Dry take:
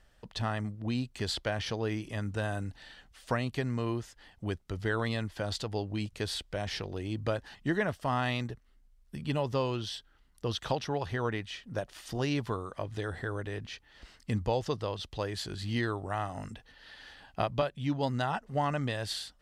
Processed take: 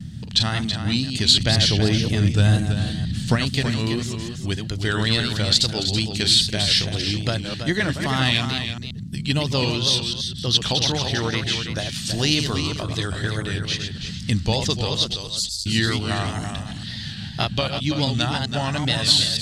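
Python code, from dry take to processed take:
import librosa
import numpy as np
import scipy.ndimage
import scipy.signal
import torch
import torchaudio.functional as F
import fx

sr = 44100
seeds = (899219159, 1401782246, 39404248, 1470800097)

p1 = fx.reverse_delay(x, sr, ms=130, wet_db=-6.5)
p2 = fx.wow_flutter(p1, sr, seeds[0], rate_hz=2.1, depth_cents=100.0)
p3 = fx.dmg_noise_band(p2, sr, seeds[1], low_hz=73.0, high_hz=210.0, level_db=-43.0)
p4 = fx.low_shelf(p3, sr, hz=470.0, db=9.0, at=(1.4, 3.36))
p5 = fx.cheby2_bandstop(p4, sr, low_hz=220.0, high_hz=1400.0, order=4, stop_db=70, at=(15.16, 15.66))
p6 = p5 + 10.0 ** (-8.0 / 20.0) * np.pad(p5, (int(328 * sr / 1000.0), 0))[:len(p5)]
p7 = fx.rider(p6, sr, range_db=3, speed_s=2.0)
p8 = p6 + F.gain(torch.from_numpy(p7), 1.0).numpy()
p9 = fx.graphic_eq(p8, sr, hz=(500, 1000, 4000, 8000), db=(-6, -6, 11, 8))
y = F.gain(torch.from_numpy(p9), 2.0).numpy()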